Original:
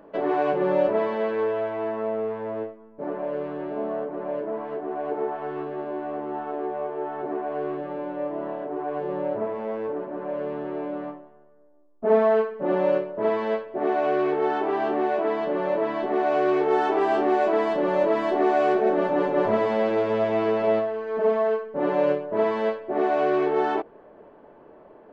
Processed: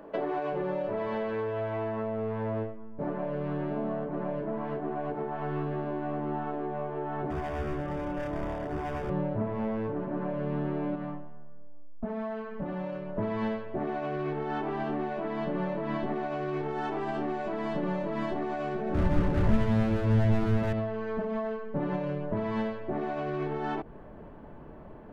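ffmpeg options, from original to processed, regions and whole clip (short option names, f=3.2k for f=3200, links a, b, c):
-filter_complex "[0:a]asettb=1/sr,asplit=3[a][b][c];[a]atrim=end=7.304[d];[b]atrim=start=7.3:end=9.1,asetpts=PTS-STARTPTS,afade=t=in:d=0.004:c=qsin,afade=t=out:st=1.796:d=0.004:c=qsin,lowshelf=f=170:g=-9,volume=29.5dB,asoftclip=hard,volume=-29.5dB,asuperstop=centerf=4100:order=4:qfactor=6.8[e];[c]atrim=start=9.096[f];[d][e]acrossfade=d=0.004:c1=hsin:c2=qsin[g];[g][f]acrossfade=d=0.004:c1=qsin:c2=hsin,asettb=1/sr,asplit=3[h][i][j];[h]atrim=end=10.954[k];[i]atrim=start=10.95:end=13.16,asetpts=PTS-STARTPTS,afade=t=in:d=0.004:c=qsin,afade=t=out:st=2.206:d=0.004:c=qsin,acompressor=threshold=-33dB:ratio=4:attack=3.2:release=140:knee=1:detection=peak,equalizer=f=370:t=o:w=0.55:g=-5.5[l];[j]atrim=start=13.156[m];[k][l]acrossfade=d=0.004:c1=hsin:c2=qsin[n];[n][m]acrossfade=d=0.004:c1=qsin:c2=hsin,asettb=1/sr,asplit=3[o][p][q];[o]atrim=end=18.944[r];[p]atrim=start=18.94:end=20.73,asetpts=PTS-STARTPTS,afade=t=in:d=0.004:c=qsin,afade=t=out:st=1.786:d=0.004:c=qsin,equalizer=f=220:t=o:w=2.4:g=3.5,volume=20.5dB,asoftclip=hard,volume=-20.5dB[s];[q]atrim=start=20.726[t];[r][s]acrossfade=d=0.004:c1=hsin:c2=qsin[u];[u][t]acrossfade=d=0.004:c1=qsin:c2=hsin,alimiter=limit=-18.5dB:level=0:latency=1:release=107,acrossover=split=160[v][w];[w]acompressor=threshold=-30dB:ratio=6[x];[v][x]amix=inputs=2:normalize=0,asubboost=boost=8:cutoff=150,volume=2dB"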